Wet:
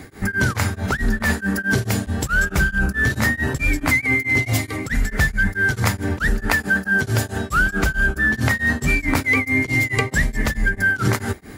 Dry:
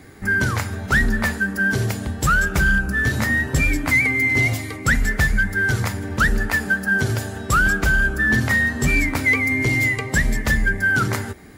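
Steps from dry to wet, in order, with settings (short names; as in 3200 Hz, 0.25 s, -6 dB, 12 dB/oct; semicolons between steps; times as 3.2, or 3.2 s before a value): in parallel at -2 dB: negative-ratio compressor -23 dBFS, ratio -0.5; on the sum: beating tremolo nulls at 4.6 Hz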